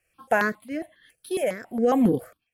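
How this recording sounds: tremolo triangle 1.1 Hz, depth 90%; notches that jump at a steady rate 7.3 Hz 980–3500 Hz

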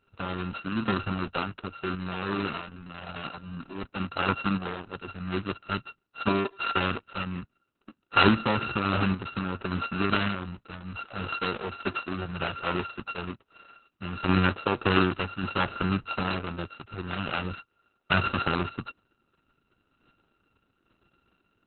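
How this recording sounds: a buzz of ramps at a fixed pitch in blocks of 32 samples; random-step tremolo; Opus

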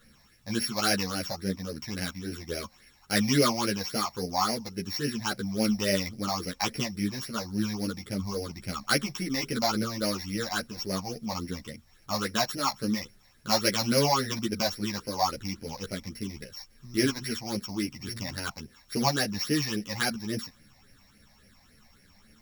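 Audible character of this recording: a buzz of ramps at a fixed pitch in blocks of 8 samples; phasing stages 8, 3.6 Hz, lowest notch 390–1100 Hz; a quantiser's noise floor 12-bit, dither none; a shimmering, thickened sound

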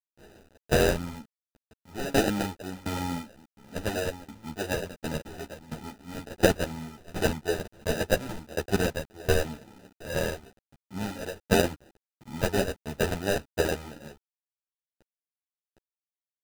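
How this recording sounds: aliases and images of a low sample rate 1.1 kHz, jitter 0%; tremolo saw down 1.4 Hz, depth 95%; a quantiser's noise floor 10-bit, dither none; a shimmering, thickened sound

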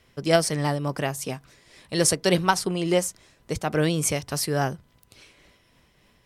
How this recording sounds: tremolo triangle 3.5 Hz, depth 35%

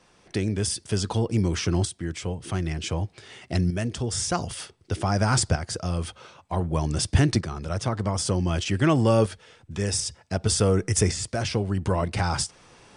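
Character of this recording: tremolo saw up 0.54 Hz, depth 60%; MP2

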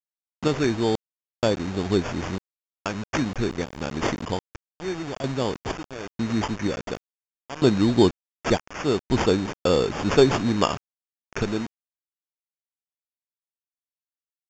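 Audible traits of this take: aliases and images of a low sample rate 4 kHz, jitter 0%; random-step tremolo 2.1 Hz, depth 100%; a quantiser's noise floor 6-bit, dither none; µ-law

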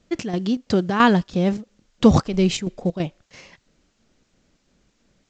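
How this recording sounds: chopped level 3 Hz, depth 60%, duty 70%; a quantiser's noise floor 12-bit, dither triangular; A-law

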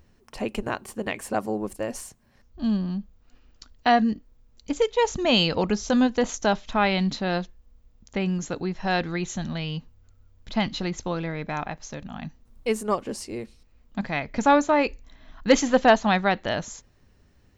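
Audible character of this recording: noise floor -59 dBFS; spectral tilt -4.5 dB/octave

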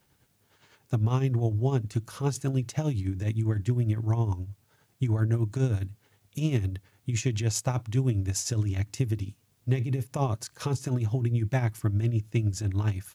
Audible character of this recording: tremolo triangle 9.8 Hz, depth 70%; a quantiser's noise floor 12-bit, dither triangular

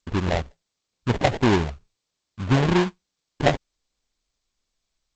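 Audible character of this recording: phasing stages 8, 2.2 Hz, lowest notch 330–1700 Hz; aliases and images of a low sample rate 1.3 kHz, jitter 20%; G.722

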